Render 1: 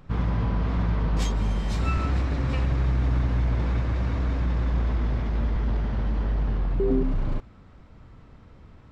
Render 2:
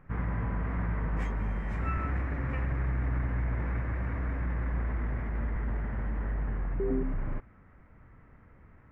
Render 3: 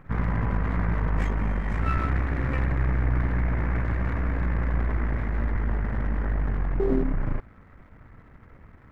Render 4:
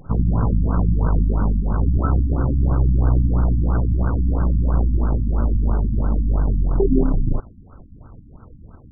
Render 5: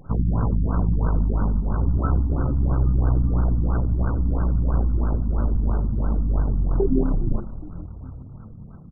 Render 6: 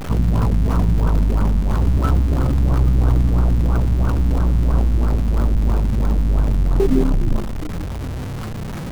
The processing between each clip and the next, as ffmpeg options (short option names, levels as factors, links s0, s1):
-af "highshelf=f=2800:t=q:w=3:g=-13,volume=0.447"
-af "aeval=exprs='if(lt(val(0),0),0.447*val(0),val(0))':c=same,volume=2.66"
-af "afftfilt=real='re*lt(b*sr/1024,290*pow(1600/290,0.5+0.5*sin(2*PI*3*pts/sr)))':imag='im*lt(b*sr/1024,290*pow(1600/290,0.5+0.5*sin(2*PI*3*pts/sr)))':win_size=1024:overlap=0.75,volume=2.37"
-filter_complex "[0:a]asplit=7[s0][s1][s2][s3][s4][s5][s6];[s1]adelay=412,afreqshift=-45,volume=0.178[s7];[s2]adelay=824,afreqshift=-90,volume=0.108[s8];[s3]adelay=1236,afreqshift=-135,volume=0.0661[s9];[s4]adelay=1648,afreqshift=-180,volume=0.0403[s10];[s5]adelay=2060,afreqshift=-225,volume=0.0245[s11];[s6]adelay=2472,afreqshift=-270,volume=0.015[s12];[s0][s7][s8][s9][s10][s11][s12]amix=inputs=7:normalize=0,volume=0.708"
-af "aeval=exprs='val(0)+0.5*0.0473*sgn(val(0))':c=same,volume=1.41"